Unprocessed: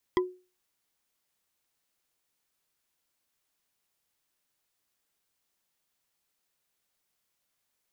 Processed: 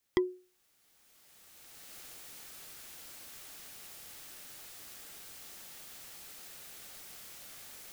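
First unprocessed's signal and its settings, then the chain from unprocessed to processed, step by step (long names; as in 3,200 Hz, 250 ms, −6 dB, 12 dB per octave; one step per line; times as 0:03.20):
struck wood bar, lowest mode 365 Hz, decay 0.33 s, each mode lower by 4 dB, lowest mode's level −19 dB
camcorder AGC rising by 17 dB per second
notch filter 1,000 Hz, Q 10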